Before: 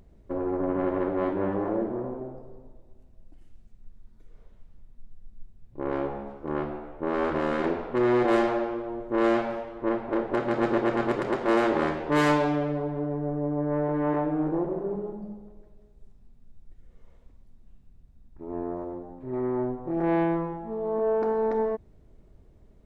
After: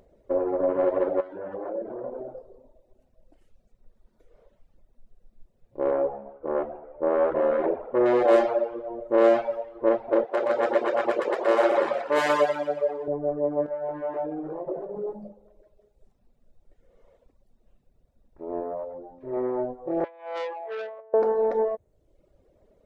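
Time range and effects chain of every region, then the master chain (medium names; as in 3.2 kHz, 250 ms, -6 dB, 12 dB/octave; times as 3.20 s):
1.20–2.48 s: peaking EQ 1.5 kHz +6 dB 0.25 oct + compression 5:1, threshold -32 dBFS
5.91–8.06 s: low-pass 1.7 kHz + hum notches 50/100/150/200/250/300/350/400 Hz
10.25–13.08 s: high-pass 610 Hz 6 dB/octave + two-band feedback delay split 940 Hz, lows 88 ms, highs 121 ms, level -3 dB
13.66–15.29 s: de-hum 47.9 Hz, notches 20 + compression 10:1, threshold -30 dBFS + doubling 19 ms -5.5 dB
18.60–19.37 s: hum notches 50/100/150/200/250/300/350/400 Hz + decimation joined by straight lines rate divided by 3×
20.04–21.14 s: inverse Chebyshev high-pass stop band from 230 Hz + compressor with a negative ratio -34 dBFS, ratio -0.5 + transformer saturation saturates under 2.1 kHz
whole clip: tone controls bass -8 dB, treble 0 dB; reverb removal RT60 0.94 s; peaking EQ 550 Hz +12 dB 0.72 oct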